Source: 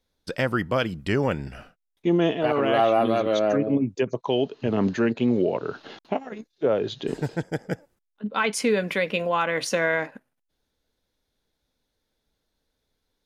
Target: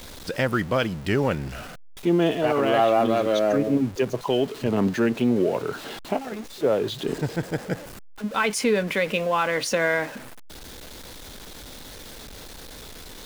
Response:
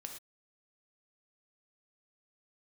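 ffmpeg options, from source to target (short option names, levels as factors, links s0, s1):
-af "aeval=exprs='val(0)+0.5*0.0188*sgn(val(0))':c=same"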